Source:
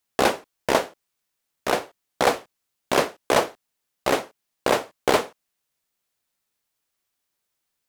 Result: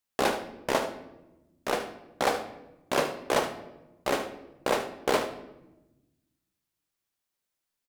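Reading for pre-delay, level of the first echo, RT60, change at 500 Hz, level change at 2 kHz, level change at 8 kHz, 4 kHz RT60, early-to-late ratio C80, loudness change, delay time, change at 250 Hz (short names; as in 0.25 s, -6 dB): 4 ms, -12.0 dB, 1.0 s, -5.5 dB, -5.5 dB, -6.0 dB, 0.65 s, 13.0 dB, -6.0 dB, 75 ms, -5.0 dB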